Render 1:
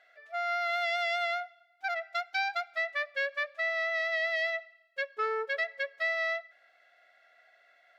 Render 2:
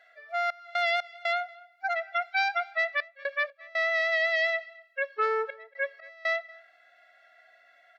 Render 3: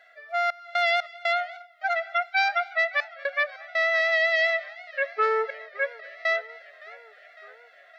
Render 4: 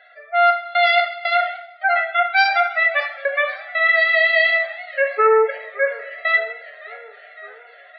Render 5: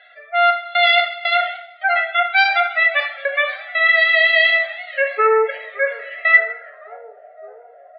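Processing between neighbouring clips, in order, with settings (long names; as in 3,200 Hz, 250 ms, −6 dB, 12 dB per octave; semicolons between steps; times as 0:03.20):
harmonic-percussive split with one part muted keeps harmonic; gate pattern "xx.x.xxxxx" 60 BPM −24 dB; slap from a distant wall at 40 metres, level −23 dB; level +4.5 dB
feedback echo with a swinging delay time 560 ms, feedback 70%, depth 165 cents, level −22 dB; level +3.5 dB
hum removal 340.5 Hz, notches 40; gate on every frequency bin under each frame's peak −25 dB strong; coupled-rooms reverb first 0.54 s, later 1.8 s, from −24 dB, DRR 2.5 dB; level +6 dB
low-pass filter sweep 3,400 Hz → 680 Hz, 0:06.08–0:07.13; level −1 dB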